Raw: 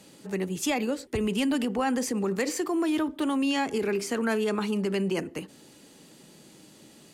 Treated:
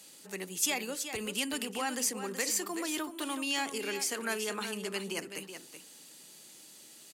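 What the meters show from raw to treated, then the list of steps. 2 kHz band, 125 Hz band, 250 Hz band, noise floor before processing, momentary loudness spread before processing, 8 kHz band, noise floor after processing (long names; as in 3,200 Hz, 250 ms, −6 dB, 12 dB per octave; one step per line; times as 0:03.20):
−2.0 dB, −14.0 dB, −12.5 dB, −54 dBFS, 6 LU, +4.5 dB, −54 dBFS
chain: spectral tilt +3.5 dB per octave
single-tap delay 377 ms −9.5 dB
level −6 dB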